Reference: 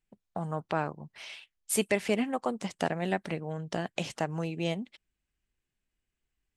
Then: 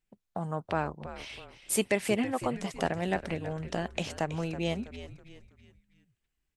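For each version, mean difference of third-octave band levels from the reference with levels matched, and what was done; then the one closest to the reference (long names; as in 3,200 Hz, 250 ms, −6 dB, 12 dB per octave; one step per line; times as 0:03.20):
4.0 dB: echo with shifted repeats 325 ms, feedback 42%, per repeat −91 Hz, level −12.5 dB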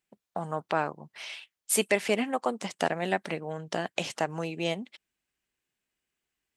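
2.5 dB: high-pass filter 350 Hz 6 dB per octave
level +4 dB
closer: second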